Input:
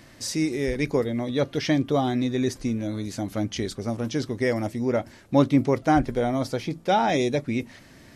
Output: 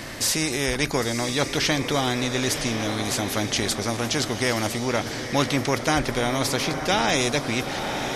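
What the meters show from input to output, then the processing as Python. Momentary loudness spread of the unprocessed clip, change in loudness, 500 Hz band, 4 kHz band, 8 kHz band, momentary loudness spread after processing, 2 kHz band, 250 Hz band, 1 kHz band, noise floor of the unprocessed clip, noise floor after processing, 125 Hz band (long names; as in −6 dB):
9 LU, +1.5 dB, −0.5 dB, +10.5 dB, +12.5 dB, 4 LU, +8.0 dB, −2.5 dB, +1.0 dB, −50 dBFS, −32 dBFS, 0.0 dB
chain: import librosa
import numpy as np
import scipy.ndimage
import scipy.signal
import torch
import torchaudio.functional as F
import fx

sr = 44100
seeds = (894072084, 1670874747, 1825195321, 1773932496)

y = fx.echo_diffused(x, sr, ms=978, feedback_pct=44, wet_db=-14)
y = fx.spectral_comp(y, sr, ratio=2.0)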